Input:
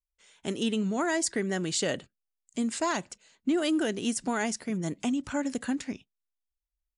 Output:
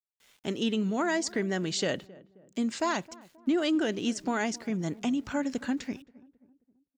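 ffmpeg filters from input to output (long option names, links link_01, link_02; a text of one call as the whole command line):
ffmpeg -i in.wav -filter_complex "[0:a]lowpass=frequency=6500:width=0.5412,lowpass=frequency=6500:width=1.3066,aeval=exprs='val(0)*gte(abs(val(0)),0.00133)':channel_layout=same,asplit=2[link_01][link_02];[link_02]adelay=266,lowpass=frequency=930:poles=1,volume=-20dB,asplit=2[link_03][link_04];[link_04]adelay=266,lowpass=frequency=930:poles=1,volume=0.48,asplit=2[link_05][link_06];[link_06]adelay=266,lowpass=frequency=930:poles=1,volume=0.48,asplit=2[link_07][link_08];[link_08]adelay=266,lowpass=frequency=930:poles=1,volume=0.48[link_09];[link_03][link_05][link_07][link_09]amix=inputs=4:normalize=0[link_10];[link_01][link_10]amix=inputs=2:normalize=0" out.wav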